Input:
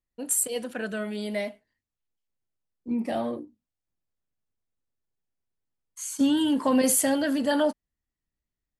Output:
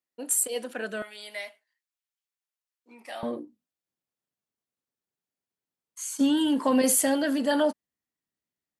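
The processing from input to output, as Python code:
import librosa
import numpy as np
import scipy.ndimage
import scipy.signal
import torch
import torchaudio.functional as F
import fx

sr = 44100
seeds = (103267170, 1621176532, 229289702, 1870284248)

y = fx.highpass(x, sr, hz=fx.steps((0.0, 280.0), (1.02, 1100.0), (3.23, 170.0)), slope=12)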